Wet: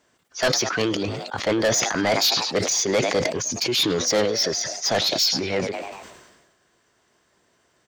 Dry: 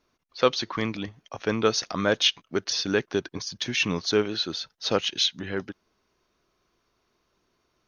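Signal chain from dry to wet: high-pass 83 Hz; frequency-shifting echo 103 ms, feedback 55%, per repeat +72 Hz, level -22.5 dB; formant shift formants +5 st; saturation -23 dBFS, distortion -7 dB; decay stretcher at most 44 dB/s; trim +7.5 dB

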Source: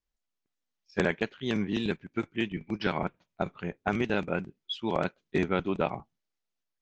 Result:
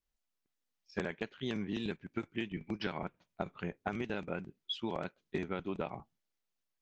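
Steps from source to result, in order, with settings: compression, threshold -32 dBFS, peak gain reduction 11 dB; trim -1 dB

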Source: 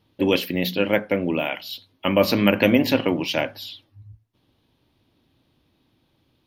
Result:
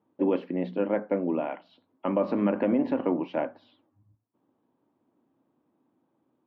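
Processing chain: Chebyshev band-pass 230–1100 Hz, order 2; peak limiter -12 dBFS, peak gain reduction 5.5 dB; trim -3 dB

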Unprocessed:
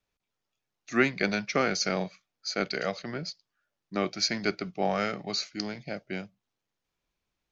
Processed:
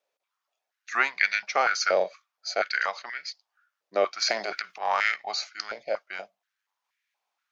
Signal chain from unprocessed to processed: 4.22–5.16 s: transient shaper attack -10 dB, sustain +10 dB; step-sequenced high-pass 4.2 Hz 560–1900 Hz

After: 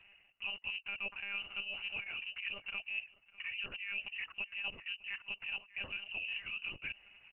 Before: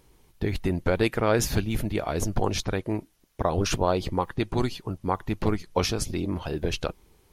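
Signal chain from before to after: reverse; compression 10:1, threshold -37 dBFS, peak gain reduction 20 dB; reverse; distance through air 260 m; on a send: delay 602 ms -22 dB; on the sum: dynamic bell 870 Hz, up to -5 dB, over -55 dBFS, Q 1.6; high-pass 100 Hz 12 dB/octave; frequency inversion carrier 2.9 kHz; monotone LPC vocoder at 8 kHz 200 Hz; trim +1.5 dB

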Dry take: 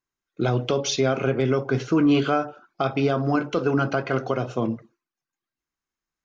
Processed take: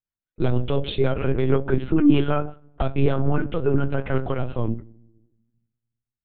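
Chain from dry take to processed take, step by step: hum notches 50/100/150/200/250/300/350 Hz; gate -35 dBFS, range -10 dB; simulated room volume 3800 m³, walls furnished, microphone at 0.33 m; rotary cabinet horn 6.3 Hz, later 0.85 Hz, at 2.26 s; LPC vocoder at 8 kHz pitch kept; bass shelf 250 Hz +7 dB

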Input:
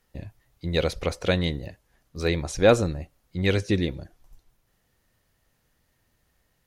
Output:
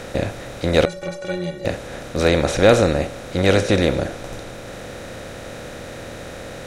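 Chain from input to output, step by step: spectral levelling over time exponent 0.4; 0.85–1.65 s: inharmonic resonator 170 Hz, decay 0.27 s, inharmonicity 0.03; trim +2 dB

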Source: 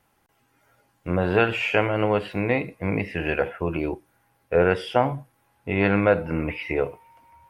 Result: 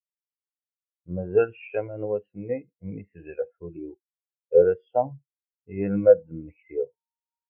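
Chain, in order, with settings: spectral contrast expander 2.5:1; trim +1.5 dB

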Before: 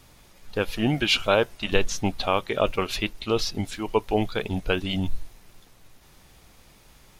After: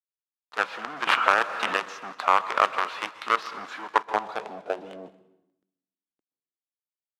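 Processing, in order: steep high-pass 170 Hz 36 dB/octave; resampled via 16 kHz; in parallel at -3 dB: compressor with a negative ratio -29 dBFS, ratio -1; on the sum: companded quantiser 2-bit; differentiator; on a send at -14.5 dB: reverberation RT60 1.0 s, pre-delay 118 ms; on the sum: low-pass sweep 1.2 kHz -> 310 Hz, 3.91–5.68 s; 1.07–1.74 s: three bands compressed up and down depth 100%; trim +8 dB

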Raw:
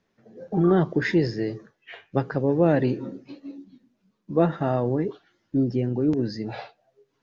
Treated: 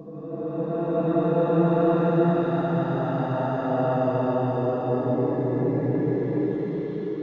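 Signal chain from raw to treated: Paulstretch 7.5×, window 0.50 s, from 4.18 s

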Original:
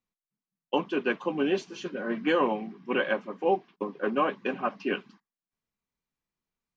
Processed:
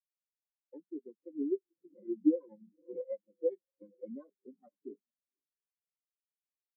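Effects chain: bass shelf 210 Hz +4 dB; echo that smears into a reverb 519 ms, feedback 43%, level -15 dB; dynamic bell 1.8 kHz, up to -5 dB, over -39 dBFS, Q 0.83; sample-and-hold 17×; 1.88–4.11 s: comb 5.9 ms, depth 71%; compression 12:1, threshold -25 dBFS, peak gain reduction 10 dB; spectral contrast expander 4:1

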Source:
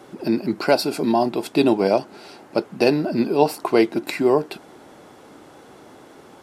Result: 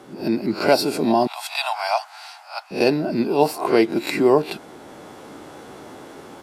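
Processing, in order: reverse spectral sustain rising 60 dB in 0.31 s; 1.27–2.71 s: steep high-pass 700 Hz 72 dB/octave; level rider gain up to 6 dB; trim -1.5 dB

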